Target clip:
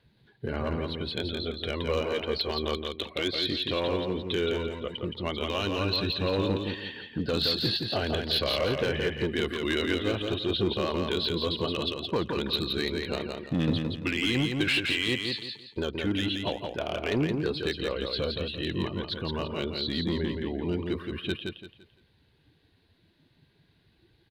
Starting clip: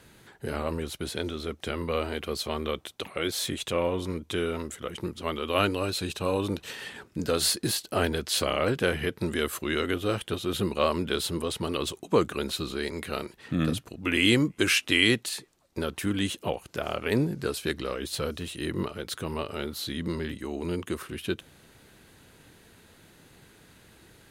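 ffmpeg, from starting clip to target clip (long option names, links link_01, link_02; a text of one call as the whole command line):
ffmpeg -i in.wav -filter_complex "[0:a]acrossover=split=4800[link_01][link_02];[link_02]acompressor=threshold=-44dB:ratio=4:attack=1:release=60[link_03];[link_01][link_03]amix=inputs=2:normalize=0,afftdn=noise_reduction=16:noise_floor=-42,highshelf=frequency=5400:width_type=q:width=3:gain=-9.5,bandreject=frequency=1300:width=6.9,alimiter=limit=-16dB:level=0:latency=1:release=72,aphaser=in_gain=1:out_gain=1:delay=3.3:decay=0.2:speed=0.15:type=triangular,asoftclip=type=hard:threshold=-20.5dB,asplit=2[link_04][link_05];[link_05]aecho=0:1:170|340|510|680:0.596|0.179|0.0536|0.0161[link_06];[link_04][link_06]amix=inputs=2:normalize=0" out.wav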